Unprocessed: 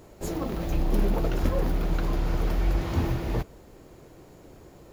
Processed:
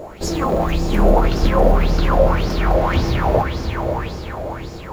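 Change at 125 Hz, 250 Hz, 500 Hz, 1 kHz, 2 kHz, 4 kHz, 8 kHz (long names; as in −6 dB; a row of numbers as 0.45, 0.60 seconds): +9.0, +9.5, +15.0, +16.5, +13.5, +13.5, +10.0 decibels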